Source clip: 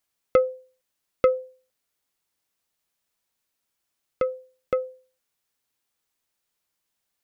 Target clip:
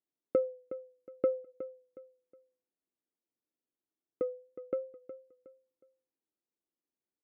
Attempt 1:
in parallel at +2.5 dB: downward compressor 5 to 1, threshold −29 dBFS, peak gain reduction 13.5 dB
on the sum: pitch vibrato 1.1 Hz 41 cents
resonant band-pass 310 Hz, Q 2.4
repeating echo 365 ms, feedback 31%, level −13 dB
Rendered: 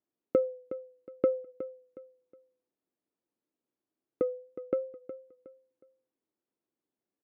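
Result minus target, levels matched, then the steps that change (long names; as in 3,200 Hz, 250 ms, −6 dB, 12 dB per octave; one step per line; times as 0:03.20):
downward compressor: peak gain reduction +13.5 dB
remove: downward compressor 5 to 1, threshold −29 dBFS, peak gain reduction 13.5 dB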